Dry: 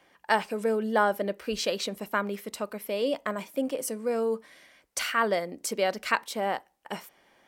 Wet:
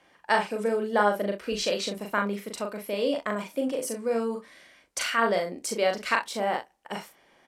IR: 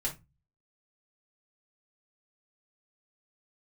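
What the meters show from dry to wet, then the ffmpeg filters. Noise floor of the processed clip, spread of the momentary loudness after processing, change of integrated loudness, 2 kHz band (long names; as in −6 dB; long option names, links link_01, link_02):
−63 dBFS, 10 LU, +1.5 dB, +1.5 dB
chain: -filter_complex "[0:a]lowpass=11000,asplit=2[link_01][link_02];[link_02]aecho=0:1:39|65:0.631|0.15[link_03];[link_01][link_03]amix=inputs=2:normalize=0"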